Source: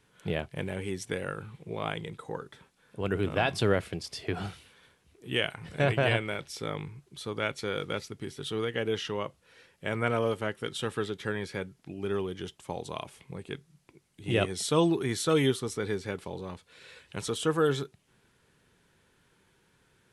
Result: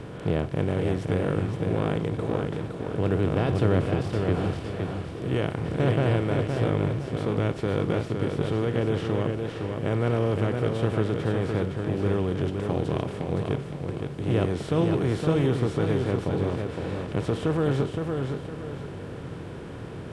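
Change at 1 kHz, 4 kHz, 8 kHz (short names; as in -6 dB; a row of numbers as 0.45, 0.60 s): +2.5 dB, -4.0 dB, n/a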